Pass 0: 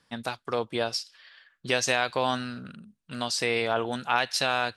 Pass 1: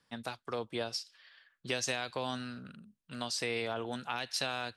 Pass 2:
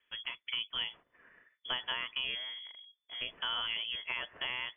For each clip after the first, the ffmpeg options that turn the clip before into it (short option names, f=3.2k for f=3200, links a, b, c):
-filter_complex "[0:a]acrossover=split=380|3000[a][b][c];[b]acompressor=threshold=-28dB:ratio=6[d];[a][d][c]amix=inputs=3:normalize=0,volume=-6.5dB"
-af "bandreject=f=2.7k:w=14,lowpass=f=3k:t=q:w=0.5098,lowpass=f=3k:t=q:w=0.6013,lowpass=f=3k:t=q:w=0.9,lowpass=f=3k:t=q:w=2.563,afreqshift=-3500"